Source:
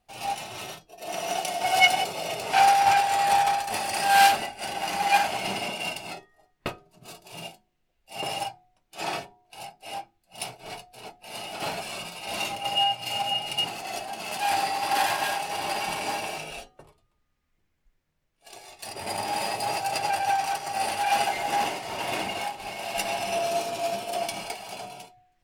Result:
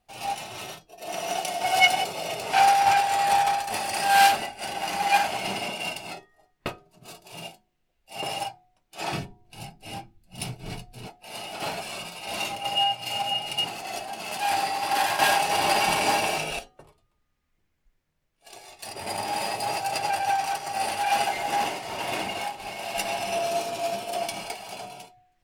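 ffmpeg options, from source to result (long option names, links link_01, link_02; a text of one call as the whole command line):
ffmpeg -i in.wav -filter_complex "[0:a]asplit=3[link_01][link_02][link_03];[link_01]afade=type=out:start_time=9.11:duration=0.02[link_04];[link_02]asubboost=boost=7:cutoff=240,afade=type=in:start_time=9.11:duration=0.02,afade=type=out:start_time=11.06:duration=0.02[link_05];[link_03]afade=type=in:start_time=11.06:duration=0.02[link_06];[link_04][link_05][link_06]amix=inputs=3:normalize=0,asplit=3[link_07][link_08][link_09];[link_07]atrim=end=15.192[link_10];[link_08]atrim=start=15.188:end=16.592,asetpts=PTS-STARTPTS,volume=7dB[link_11];[link_09]atrim=start=16.588[link_12];[link_10][link_11]acrossfade=duration=0.004:curve1=hsin:curve2=hsin[link_13];[link_13][link_12]acrossfade=duration=0.004:curve1=hsin:curve2=hsin" out.wav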